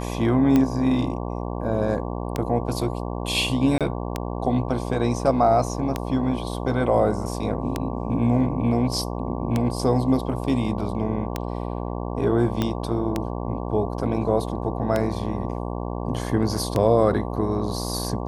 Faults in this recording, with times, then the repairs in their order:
mains buzz 60 Hz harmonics 19 −29 dBFS
scratch tick 33 1/3 rpm −9 dBFS
0:03.78–0:03.81: drop-out 27 ms
0:12.62: click −10 dBFS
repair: click removal
hum removal 60 Hz, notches 19
repair the gap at 0:03.78, 27 ms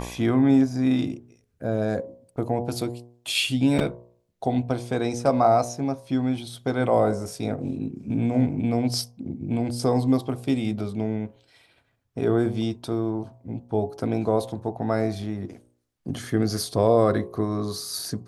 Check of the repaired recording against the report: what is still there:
0:12.62: click

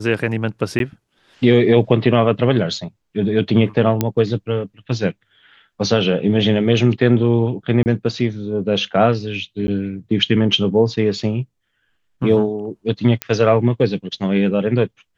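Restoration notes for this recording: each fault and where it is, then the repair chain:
0:00.79–0:00.80: drop-out 12 ms
0:04.01: click −3 dBFS
0:07.83–0:07.86: drop-out 29 ms
0:09.67–0:09.68: drop-out 10 ms
0:13.22: click −5 dBFS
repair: click removal
repair the gap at 0:00.79, 12 ms
repair the gap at 0:07.83, 29 ms
repair the gap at 0:09.67, 10 ms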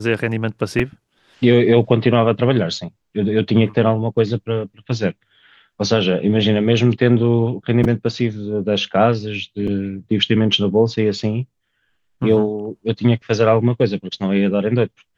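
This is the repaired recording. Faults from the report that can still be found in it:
none of them is left

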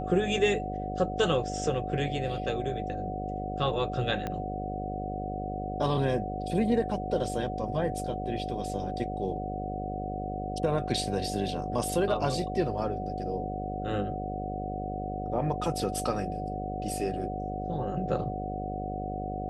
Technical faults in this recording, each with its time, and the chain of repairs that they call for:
mains buzz 50 Hz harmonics 13 −36 dBFS
whistle 740 Hz −35 dBFS
0:04.27: click −19 dBFS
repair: click removal
hum removal 50 Hz, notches 13
notch filter 740 Hz, Q 30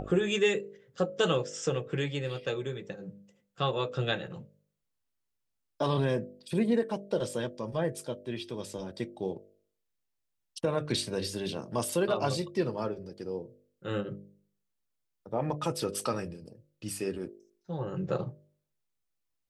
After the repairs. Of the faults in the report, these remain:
0:04.27: click

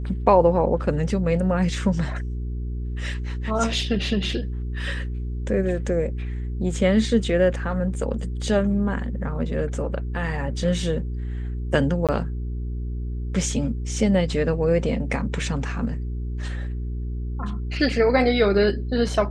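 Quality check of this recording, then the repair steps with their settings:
mains hum 60 Hz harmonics 7 −28 dBFS
0:12.07–0:12.09: drop-out 17 ms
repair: hum removal 60 Hz, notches 7
repair the gap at 0:12.07, 17 ms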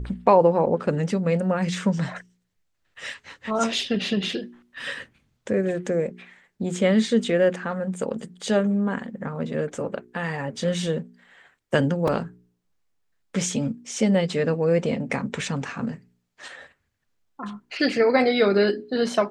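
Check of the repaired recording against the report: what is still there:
none of them is left

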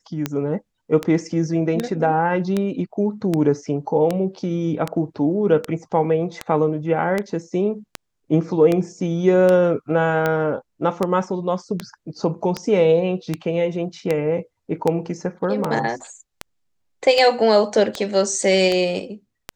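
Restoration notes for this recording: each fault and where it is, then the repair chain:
scratch tick 78 rpm −8 dBFS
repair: click removal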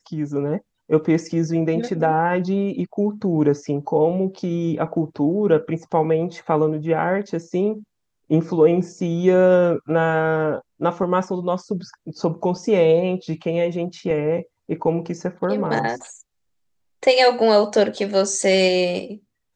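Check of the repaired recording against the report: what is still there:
none of them is left

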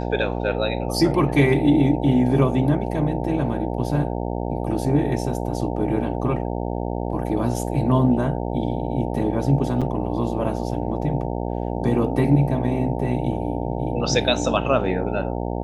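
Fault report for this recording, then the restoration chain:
mains buzz 60 Hz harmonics 15 −26 dBFS
0:09.81–0:09.82: drop-out 6.2 ms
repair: hum removal 60 Hz, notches 15
repair the gap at 0:09.81, 6.2 ms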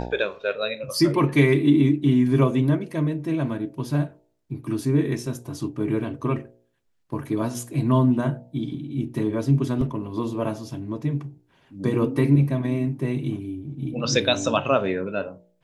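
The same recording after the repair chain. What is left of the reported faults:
none of them is left

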